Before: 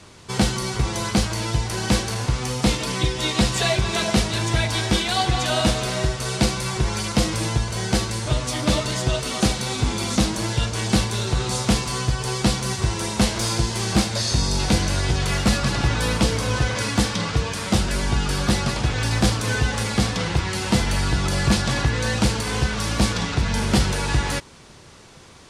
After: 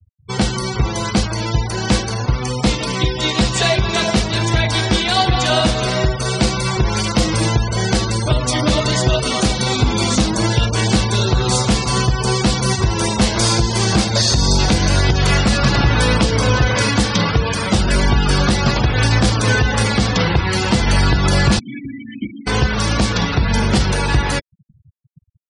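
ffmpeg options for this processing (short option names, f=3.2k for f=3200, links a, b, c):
-filter_complex "[0:a]asplit=2[a][b];[b]afade=t=in:st=11.47:d=0.01,afade=t=out:st=11.98:d=0.01,aecho=0:1:280|560|840|1120|1400|1680|1960:0.16788|0.109122|0.0709295|0.0461042|0.0299677|0.019479|0.0126614[c];[a][c]amix=inputs=2:normalize=0,asettb=1/sr,asplit=3[d][e][f];[d]atrim=end=21.594[g];[e]atrim=start=21.59:end=22.47,asetpts=PTS-STARTPTS,afade=t=in:d=0.004:c=qsin,afade=t=out:st=0.876:d=0.004:c=qsin,asplit=3[h][i][j];[h]bandpass=f=270:t=q:w=8,volume=0dB[k];[i]bandpass=f=2.29k:t=q:w=8,volume=-6dB[l];[j]bandpass=f=3.01k:t=q:w=8,volume=-9dB[m];[k][l][m]amix=inputs=3:normalize=0[n];[f]atrim=start=22.466[o];[g][n]acrossfade=d=0.004:c1=hsin:c2=qsin[p];[p][o]acrossfade=d=0.004:c1=qsin:c2=hsin,afftfilt=real='re*gte(hypot(re,im),0.0355)':imag='im*gte(hypot(re,im),0.0355)':win_size=1024:overlap=0.75,dynaudnorm=f=980:g=13:m=11.5dB,alimiter=limit=-9dB:level=0:latency=1:release=147,volume=5dB"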